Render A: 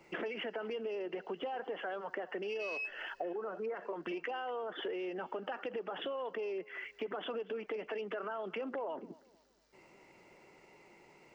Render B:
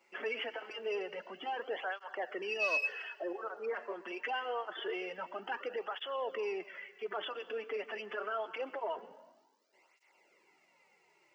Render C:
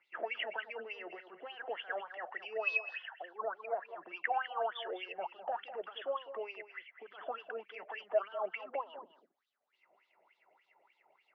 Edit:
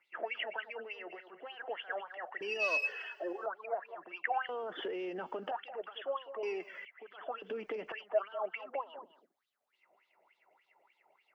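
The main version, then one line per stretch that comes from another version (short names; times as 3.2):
C
2.41–3.46 from B
4.49–5.51 from A
6.43–6.85 from B
7.42–7.92 from A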